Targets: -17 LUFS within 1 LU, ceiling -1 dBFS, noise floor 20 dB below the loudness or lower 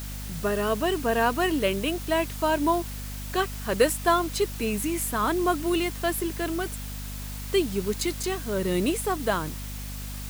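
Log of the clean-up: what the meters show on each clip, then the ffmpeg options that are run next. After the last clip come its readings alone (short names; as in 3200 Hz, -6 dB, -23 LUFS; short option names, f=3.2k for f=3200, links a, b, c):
hum 50 Hz; harmonics up to 250 Hz; hum level -34 dBFS; noise floor -35 dBFS; noise floor target -47 dBFS; loudness -27.0 LUFS; peak -7.0 dBFS; loudness target -17.0 LUFS
-> -af "bandreject=f=50:t=h:w=6,bandreject=f=100:t=h:w=6,bandreject=f=150:t=h:w=6,bandreject=f=200:t=h:w=6,bandreject=f=250:t=h:w=6"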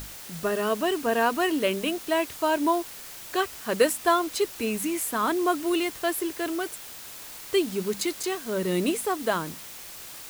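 hum none; noise floor -42 dBFS; noise floor target -47 dBFS
-> -af "afftdn=nr=6:nf=-42"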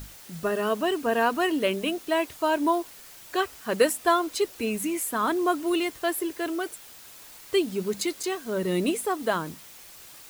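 noise floor -47 dBFS; loudness -26.5 LUFS; peak -7.5 dBFS; loudness target -17.0 LUFS
-> -af "volume=9.5dB,alimiter=limit=-1dB:level=0:latency=1"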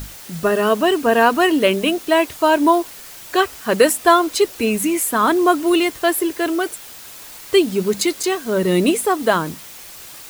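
loudness -17.5 LUFS; peak -1.0 dBFS; noise floor -38 dBFS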